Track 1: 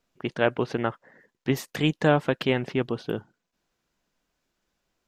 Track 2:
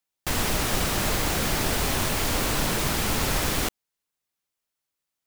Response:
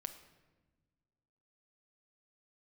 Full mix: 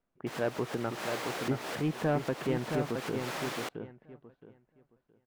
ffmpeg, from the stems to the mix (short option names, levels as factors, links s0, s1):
-filter_complex "[0:a]lowpass=1900,asoftclip=type=tanh:threshold=0.158,volume=0.531,asplit=3[s0][s1][s2];[s1]volume=0.531[s3];[1:a]highpass=400,volume=0.447,asplit=2[s4][s5];[s5]volume=0.0708[s6];[s2]apad=whole_len=232257[s7];[s4][s7]sidechaincompress=threshold=0.0112:ratio=10:attack=5.5:release=161[s8];[2:a]atrim=start_sample=2205[s9];[s6][s9]afir=irnorm=-1:irlink=0[s10];[s3]aecho=0:1:669|1338|2007|2676:1|0.22|0.0484|0.0106[s11];[s0][s8][s10][s11]amix=inputs=4:normalize=0,lowpass=f=2600:p=1"